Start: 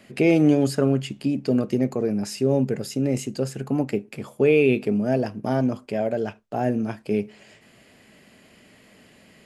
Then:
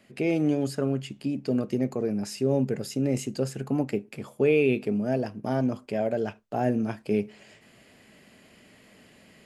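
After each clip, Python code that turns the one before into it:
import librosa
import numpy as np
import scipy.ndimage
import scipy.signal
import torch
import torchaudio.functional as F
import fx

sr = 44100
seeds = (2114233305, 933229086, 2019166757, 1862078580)

y = fx.rider(x, sr, range_db=10, speed_s=2.0)
y = F.gain(torch.from_numpy(y), -5.0).numpy()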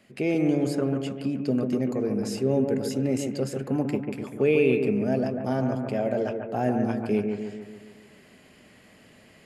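y = fx.echo_bbd(x, sr, ms=143, stages=2048, feedback_pct=56, wet_db=-5)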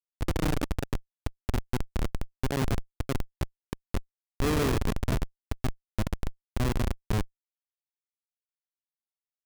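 y = fx.schmitt(x, sr, flips_db=-19.0)
y = F.gain(torch.from_numpy(y), 2.0).numpy()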